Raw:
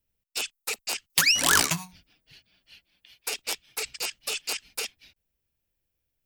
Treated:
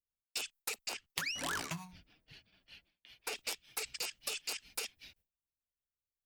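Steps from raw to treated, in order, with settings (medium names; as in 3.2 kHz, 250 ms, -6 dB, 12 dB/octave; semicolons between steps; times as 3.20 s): gate with hold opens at -55 dBFS; 0.89–3.36 s: treble shelf 3.8 kHz -10 dB; compression 6:1, threshold -36 dBFS, peak gain reduction 15 dB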